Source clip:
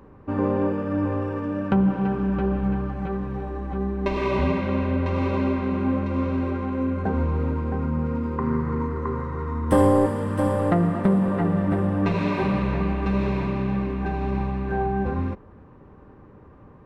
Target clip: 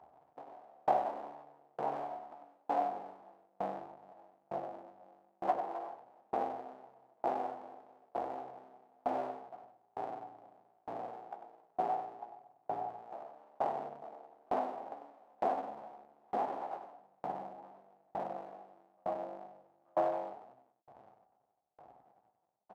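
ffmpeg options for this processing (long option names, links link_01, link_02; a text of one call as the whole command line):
ffmpeg -i in.wav -filter_complex "[0:a]aemphasis=mode=reproduction:type=riaa,afftdn=noise_reduction=18:noise_floor=-23,highshelf=frequency=5200:gain=8,acompressor=threshold=-26dB:ratio=8,aeval=exprs='abs(val(0))':channel_layout=same,highpass=frequency=1000:width_type=q:width=5.7,asplit=2[link_01][link_02];[link_02]aecho=0:1:11|72:0.447|0.631[link_03];[link_01][link_03]amix=inputs=2:normalize=0,asetrate=32667,aresample=44100,aeval=exprs='val(0)*pow(10,-39*if(lt(mod(1.1*n/s,1),2*abs(1.1)/1000),1-mod(1.1*n/s,1)/(2*abs(1.1)/1000),(mod(1.1*n/s,1)-2*abs(1.1)/1000)/(1-2*abs(1.1)/1000))/20)':channel_layout=same,volume=6.5dB" out.wav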